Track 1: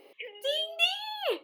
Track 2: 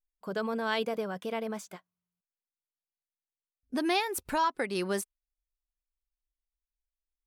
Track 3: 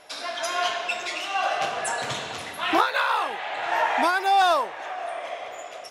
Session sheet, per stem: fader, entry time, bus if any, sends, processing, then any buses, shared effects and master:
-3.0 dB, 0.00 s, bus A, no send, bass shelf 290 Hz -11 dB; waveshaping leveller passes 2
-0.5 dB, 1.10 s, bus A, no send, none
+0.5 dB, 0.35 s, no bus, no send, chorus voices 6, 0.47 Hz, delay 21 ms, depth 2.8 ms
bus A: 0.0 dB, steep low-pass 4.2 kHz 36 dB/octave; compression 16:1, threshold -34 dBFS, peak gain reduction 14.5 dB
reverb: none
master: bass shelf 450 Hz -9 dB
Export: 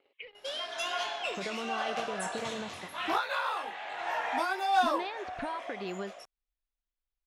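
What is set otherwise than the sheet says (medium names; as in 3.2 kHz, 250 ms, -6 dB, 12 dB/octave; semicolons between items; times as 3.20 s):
stem 1 -3.0 dB -> -11.5 dB; stem 3 +0.5 dB -> -6.0 dB; master: missing bass shelf 450 Hz -9 dB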